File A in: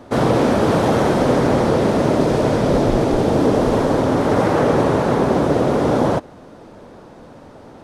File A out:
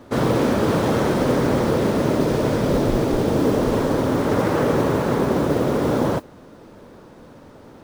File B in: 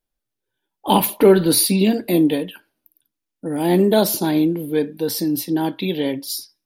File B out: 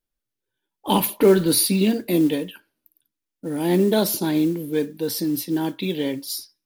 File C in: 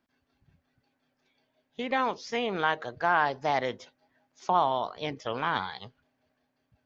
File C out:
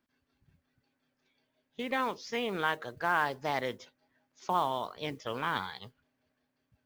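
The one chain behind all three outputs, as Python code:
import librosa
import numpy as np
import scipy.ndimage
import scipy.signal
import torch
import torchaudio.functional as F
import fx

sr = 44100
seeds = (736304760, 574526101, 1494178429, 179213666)

y = fx.peak_eq(x, sr, hz=730.0, db=-5.0, octaves=0.55)
y = fx.mod_noise(y, sr, seeds[0], snr_db=27)
y = y * 10.0 ** (-2.5 / 20.0)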